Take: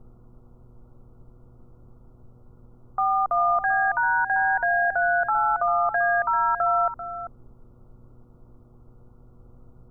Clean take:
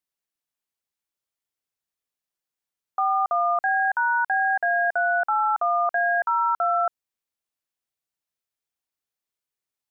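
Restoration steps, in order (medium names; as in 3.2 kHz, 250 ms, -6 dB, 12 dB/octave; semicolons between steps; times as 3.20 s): de-hum 120.9 Hz, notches 4; noise print and reduce 30 dB; inverse comb 391 ms -11.5 dB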